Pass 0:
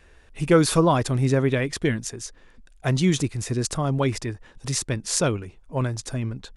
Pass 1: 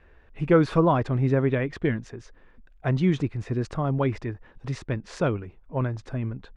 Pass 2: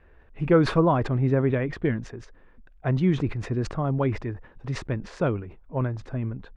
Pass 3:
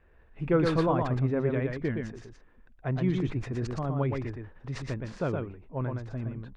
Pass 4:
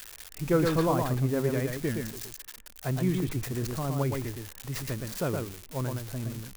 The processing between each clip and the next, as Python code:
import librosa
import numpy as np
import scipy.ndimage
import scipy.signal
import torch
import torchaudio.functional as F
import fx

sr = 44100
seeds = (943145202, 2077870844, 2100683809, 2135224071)

y1 = scipy.signal.sosfilt(scipy.signal.butter(2, 2100.0, 'lowpass', fs=sr, output='sos'), x)
y1 = y1 * 10.0 ** (-1.5 / 20.0)
y2 = fx.high_shelf(y1, sr, hz=3400.0, db=-9.5)
y2 = fx.sustainer(y2, sr, db_per_s=120.0)
y3 = y2 + 10.0 ** (-4.0 / 20.0) * np.pad(y2, (int(118 * sr / 1000.0), 0))[:len(y2)]
y3 = y3 * 10.0 ** (-6.0 / 20.0)
y4 = y3 + 0.5 * 10.0 ** (-27.0 / 20.0) * np.diff(np.sign(y3), prepend=np.sign(y3[:1]))
y4 = fx.end_taper(y4, sr, db_per_s=240.0)